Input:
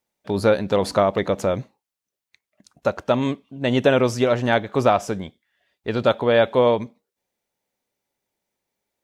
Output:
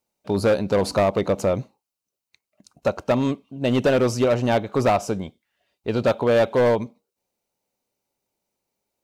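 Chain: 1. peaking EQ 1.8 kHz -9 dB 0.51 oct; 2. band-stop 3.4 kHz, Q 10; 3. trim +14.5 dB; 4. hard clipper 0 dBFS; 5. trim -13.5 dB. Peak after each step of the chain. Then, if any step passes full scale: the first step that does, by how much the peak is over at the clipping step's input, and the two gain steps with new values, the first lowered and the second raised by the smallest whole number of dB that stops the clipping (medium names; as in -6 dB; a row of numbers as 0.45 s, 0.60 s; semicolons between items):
-5.0 dBFS, -5.5 dBFS, +9.0 dBFS, 0.0 dBFS, -13.5 dBFS; step 3, 9.0 dB; step 3 +5.5 dB, step 5 -4.5 dB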